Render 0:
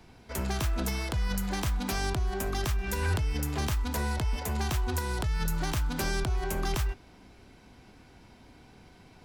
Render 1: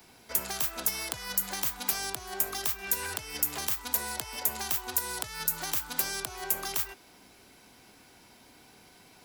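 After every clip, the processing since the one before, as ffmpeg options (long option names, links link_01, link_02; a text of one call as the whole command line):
ffmpeg -i in.wav -filter_complex "[0:a]acrossover=split=170|450[link_01][link_02][link_03];[link_01]acompressor=threshold=-40dB:ratio=4[link_04];[link_02]acompressor=threshold=-47dB:ratio=4[link_05];[link_03]acompressor=threshold=-35dB:ratio=4[link_06];[link_04][link_05][link_06]amix=inputs=3:normalize=0,aemphasis=mode=production:type=bsi" out.wav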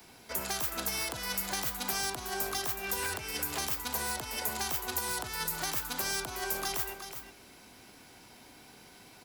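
ffmpeg -i in.wav -filter_complex "[0:a]acrossover=split=150|1400[link_01][link_02][link_03];[link_03]alimiter=limit=-21.5dB:level=0:latency=1:release=75[link_04];[link_01][link_02][link_04]amix=inputs=3:normalize=0,aecho=1:1:370:0.335,volume=1.5dB" out.wav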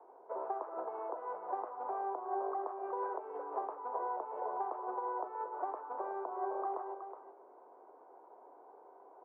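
ffmpeg -i in.wav -af "asuperpass=centerf=640:order=8:qfactor=0.91,volume=3.5dB" out.wav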